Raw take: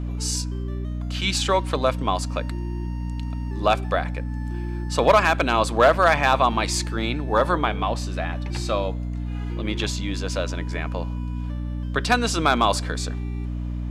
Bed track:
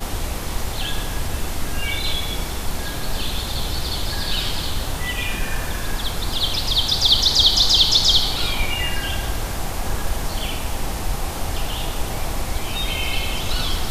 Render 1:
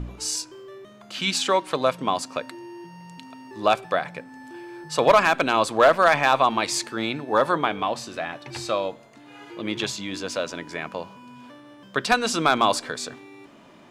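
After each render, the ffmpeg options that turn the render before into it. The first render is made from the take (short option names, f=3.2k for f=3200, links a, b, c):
-af "bandreject=f=60:t=h:w=4,bandreject=f=120:t=h:w=4,bandreject=f=180:t=h:w=4,bandreject=f=240:t=h:w=4,bandreject=f=300:t=h:w=4"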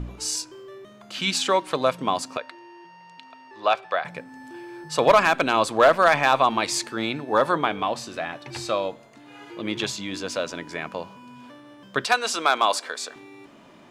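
-filter_complex "[0:a]asettb=1/sr,asplit=3[a][b][c];[a]atrim=end=2.374[d];[b]atrim=start=2.37:end=4.05,asetpts=PTS-STARTPTS,afade=t=in:d=0.004:c=qsin,afade=t=out:st=1.676:d=0.004:c=qsin,acrossover=split=470 5200:gain=0.158 1 0.126[e][f][g];[e][f][g]amix=inputs=3:normalize=0[h];[c]atrim=start=4.046[i];[d][h]acrossfade=d=0.004:c1=hsin:c2=qsin[j];[j][i]acrossfade=d=0.004:c1=qsin:c2=hsin,asettb=1/sr,asplit=3[k][l][m];[k]atrim=end=12.044[n];[l]atrim=start=12.04:end=13.16,asetpts=PTS-STARTPTS,afade=t=in:d=0.004:c=qsin,afade=t=out:st=1.116:d=0.004:c=qsin,highpass=500[o];[m]atrim=start=13.156[p];[n][o]acrossfade=d=0.004:c1=hsin:c2=qsin[q];[q][p]acrossfade=d=0.004:c1=qsin:c2=hsin"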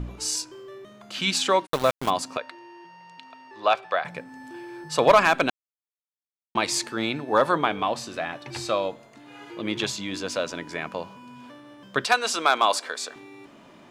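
-filter_complex "[0:a]asplit=3[a][b][c];[a]afade=t=out:st=1.65:d=0.02[d];[b]aeval=exprs='val(0)*gte(abs(val(0)),0.0473)':c=same,afade=t=in:st=1.65:d=0.02,afade=t=out:st=2.09:d=0.02[e];[c]afade=t=in:st=2.09:d=0.02[f];[d][e][f]amix=inputs=3:normalize=0,asplit=3[g][h][i];[g]atrim=end=5.5,asetpts=PTS-STARTPTS,afade=t=out:st=5.496:d=0.004:c=hsin[j];[h]atrim=start=5.5:end=6.55,asetpts=PTS-STARTPTS,volume=0[k];[i]atrim=start=6.55,asetpts=PTS-STARTPTS,afade=t=in:d=0.004:c=hsin[l];[j][k][l]concat=n=3:v=0:a=1"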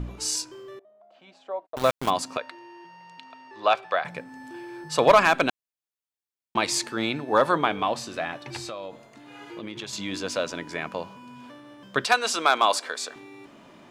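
-filter_complex "[0:a]asettb=1/sr,asplit=3[a][b][c];[a]atrim=end=0.794[d];[b]atrim=start=0.79:end=1.77,asetpts=PTS-STARTPTS,afade=t=in:d=0.004:c=qsin,afade=t=out:st=0.976:d=0.004:c=qsin,bandpass=f=660:t=q:w=8.1[e];[c]atrim=start=1.766[f];[d][e]acrossfade=d=0.004:c1=hsin:c2=qsin[g];[g][f]acrossfade=d=0.004:c1=qsin:c2=hsin,asettb=1/sr,asplit=3[h][i][j];[h]atrim=end=3.214[k];[i]atrim=start=3.21:end=3.74,asetpts=PTS-STARTPTS,afade=t=in:d=0.004:c=qsin,afade=t=out:st=0.526:d=0.004:c=qsin,lowpass=10k[l];[j]atrim=start=3.736[m];[k][l]acrossfade=d=0.004:c1=hsin:c2=qsin[n];[n][m]acrossfade=d=0.004:c1=qsin:c2=hsin,asettb=1/sr,asplit=3[o][p][q];[o]atrim=end=8.564[r];[p]atrim=start=8.56:end=9.93,asetpts=PTS-STARTPTS,afade=t=in:d=0.004:c=qsin,afade=t=out:st=1.366:d=0.004:c=qsin,acompressor=threshold=-32dB:ratio=6:attack=3.2:release=140:knee=1:detection=peak[s];[q]atrim=start=9.926[t];[r][s]acrossfade=d=0.004:c1=hsin:c2=qsin[u];[u][t]acrossfade=d=0.004:c1=qsin:c2=hsin"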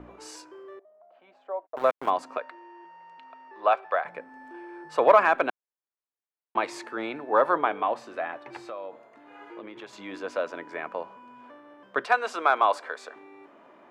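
-filter_complex "[0:a]acrossover=split=310 2100:gain=0.1 1 0.112[a][b][c];[a][b][c]amix=inputs=3:normalize=0"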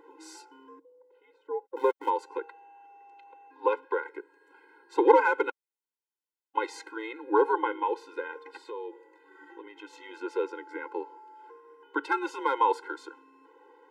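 -af "afreqshift=-120,afftfilt=real='re*eq(mod(floor(b*sr/1024/270),2),1)':imag='im*eq(mod(floor(b*sr/1024/270),2),1)':win_size=1024:overlap=0.75"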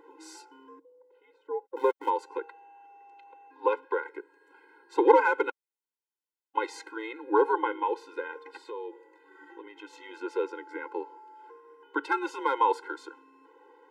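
-af anull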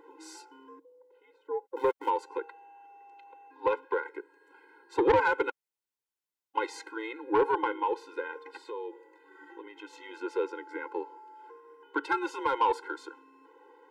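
-af "asoftclip=type=tanh:threshold=-16.5dB"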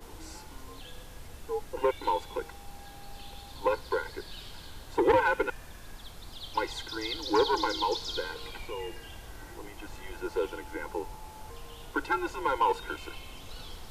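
-filter_complex "[1:a]volume=-21.5dB[a];[0:a][a]amix=inputs=2:normalize=0"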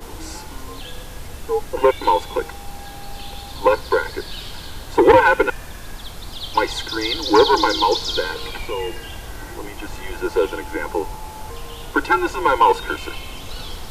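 -af "volume=12dB"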